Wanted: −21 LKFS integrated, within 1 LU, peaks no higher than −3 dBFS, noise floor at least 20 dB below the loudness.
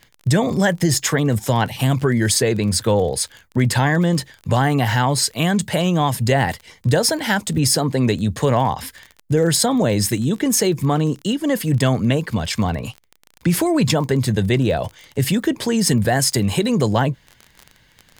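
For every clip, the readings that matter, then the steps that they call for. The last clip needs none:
crackle rate 28 per second; integrated loudness −19.0 LKFS; sample peak −4.0 dBFS; target loudness −21.0 LKFS
→ click removal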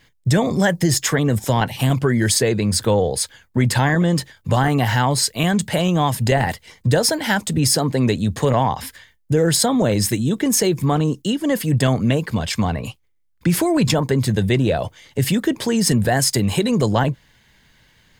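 crackle rate 0.49 per second; integrated loudness −19.0 LKFS; sample peak −4.0 dBFS; target loudness −21.0 LKFS
→ level −2 dB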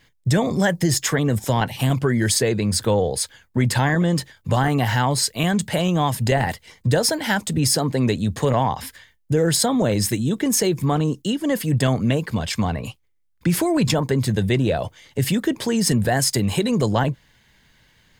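integrated loudness −21.0 LKFS; sample peak −6.0 dBFS; background noise floor −61 dBFS

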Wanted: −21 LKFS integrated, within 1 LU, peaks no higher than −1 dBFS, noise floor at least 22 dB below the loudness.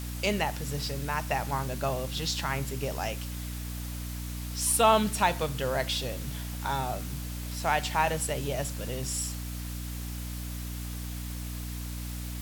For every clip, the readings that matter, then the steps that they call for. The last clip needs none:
mains hum 60 Hz; hum harmonics up to 300 Hz; level of the hum −34 dBFS; background noise floor −37 dBFS; target noise floor −53 dBFS; integrated loudness −31.0 LKFS; sample peak −10.5 dBFS; target loudness −21.0 LKFS
→ hum removal 60 Hz, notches 5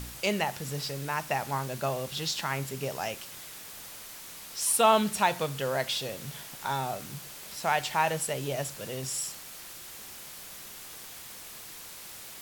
mains hum none found; background noise floor −45 dBFS; target noise floor −52 dBFS
→ broadband denoise 7 dB, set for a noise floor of −45 dBFS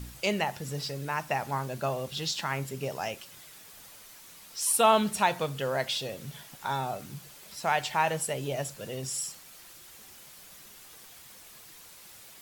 background noise floor −51 dBFS; target noise floor −52 dBFS
→ broadband denoise 6 dB, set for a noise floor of −51 dBFS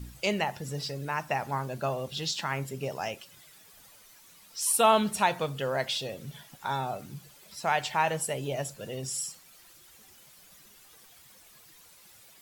background noise floor −56 dBFS; integrated loudness −30.0 LKFS; sample peak −11.0 dBFS; target loudness −21.0 LKFS
→ level +9 dB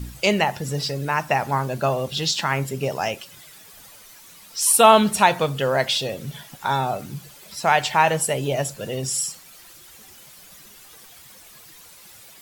integrated loudness −21.0 LKFS; sample peak −2.0 dBFS; background noise floor −47 dBFS

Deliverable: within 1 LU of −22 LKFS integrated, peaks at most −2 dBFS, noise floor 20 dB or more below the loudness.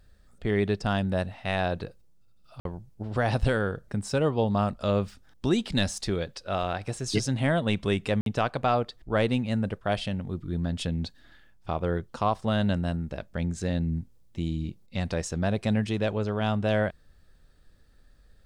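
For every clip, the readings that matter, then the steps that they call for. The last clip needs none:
number of dropouts 2; longest dropout 52 ms; integrated loudness −28.5 LKFS; sample peak −13.0 dBFS; target loudness −22.0 LKFS
→ repair the gap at 0:02.60/0:08.21, 52 ms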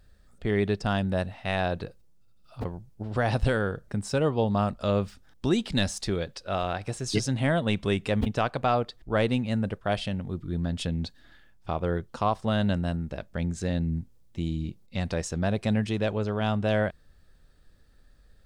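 number of dropouts 0; integrated loudness −28.5 LKFS; sample peak −13.0 dBFS; target loudness −22.0 LKFS
→ level +6.5 dB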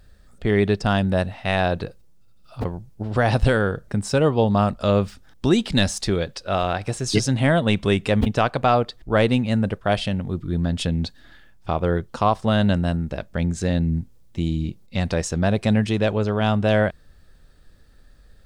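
integrated loudness −22.0 LKFS; sample peak −6.5 dBFS; background noise floor −50 dBFS

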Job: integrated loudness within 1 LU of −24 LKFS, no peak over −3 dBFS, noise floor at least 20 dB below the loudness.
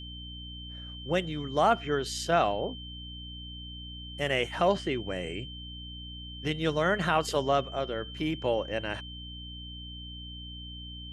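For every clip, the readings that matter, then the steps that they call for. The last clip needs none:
mains hum 60 Hz; hum harmonics up to 300 Hz; level of the hum −41 dBFS; interfering tone 3,100 Hz; level of the tone −43 dBFS; integrated loudness −31.5 LKFS; sample peak −11.0 dBFS; target loudness −24.0 LKFS
→ hum removal 60 Hz, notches 5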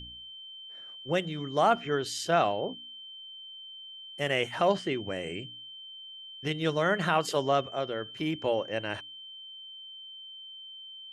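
mains hum none found; interfering tone 3,100 Hz; level of the tone −43 dBFS
→ notch filter 3,100 Hz, Q 30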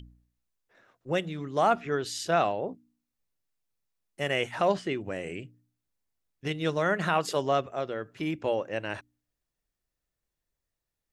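interfering tone none found; integrated loudness −29.5 LKFS; sample peak −11.5 dBFS; target loudness −24.0 LKFS
→ level +5.5 dB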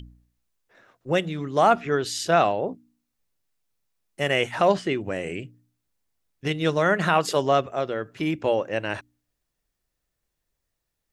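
integrated loudness −24.0 LKFS; sample peak −6.0 dBFS; background noise floor −81 dBFS

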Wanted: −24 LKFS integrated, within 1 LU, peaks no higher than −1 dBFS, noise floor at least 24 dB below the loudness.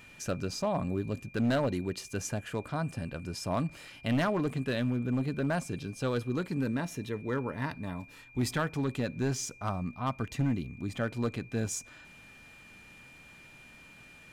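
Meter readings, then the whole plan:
share of clipped samples 1.3%; peaks flattened at −23.0 dBFS; interfering tone 2,400 Hz; level of the tone −53 dBFS; integrated loudness −33.0 LKFS; sample peak −23.0 dBFS; target loudness −24.0 LKFS
→ clipped peaks rebuilt −23 dBFS
notch filter 2,400 Hz, Q 30
level +9 dB

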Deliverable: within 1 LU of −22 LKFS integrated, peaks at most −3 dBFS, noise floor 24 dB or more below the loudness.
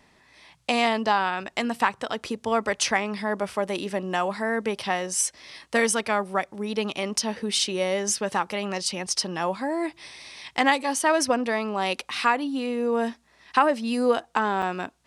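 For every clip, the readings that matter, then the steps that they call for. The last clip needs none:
number of dropouts 1; longest dropout 4.3 ms; integrated loudness −25.5 LKFS; sample peak −5.5 dBFS; target loudness −22.0 LKFS
→ repair the gap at 0:14.62, 4.3 ms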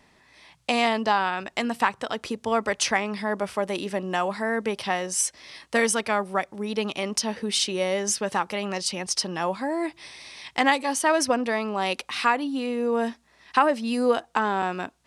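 number of dropouts 0; integrated loudness −25.5 LKFS; sample peak −5.5 dBFS; target loudness −22.0 LKFS
→ level +3.5 dB
brickwall limiter −3 dBFS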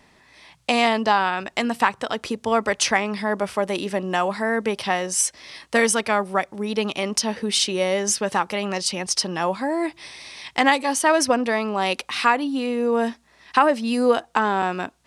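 integrated loudness −22.0 LKFS; sample peak −3.0 dBFS; background noise floor −58 dBFS

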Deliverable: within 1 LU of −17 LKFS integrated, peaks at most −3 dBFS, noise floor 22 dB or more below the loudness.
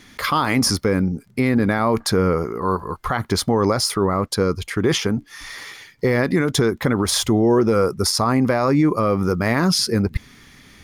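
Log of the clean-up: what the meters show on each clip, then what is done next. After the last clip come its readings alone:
crackle rate 19 per second; integrated loudness −19.5 LKFS; sample peak −8.5 dBFS; target loudness −17.0 LKFS
→ click removal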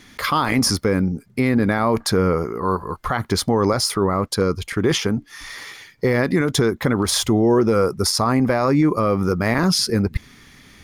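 crackle rate 0.55 per second; integrated loudness −19.5 LKFS; sample peak −7.5 dBFS; target loudness −17.0 LKFS
→ level +2.5 dB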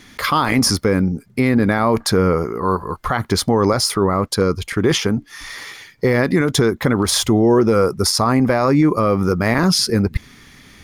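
integrated loudness −17.0 LKFS; sample peak −5.0 dBFS; background noise floor −46 dBFS

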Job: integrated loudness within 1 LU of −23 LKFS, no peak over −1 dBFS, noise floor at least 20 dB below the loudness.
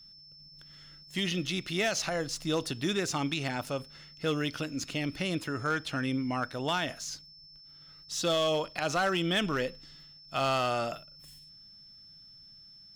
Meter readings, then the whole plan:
share of clipped samples 0.5%; peaks flattened at −22.0 dBFS; interfering tone 5,300 Hz; level of the tone −51 dBFS; integrated loudness −31.5 LKFS; sample peak −22.0 dBFS; target loudness −23.0 LKFS
→ clipped peaks rebuilt −22 dBFS
notch filter 5,300 Hz, Q 30
level +8.5 dB

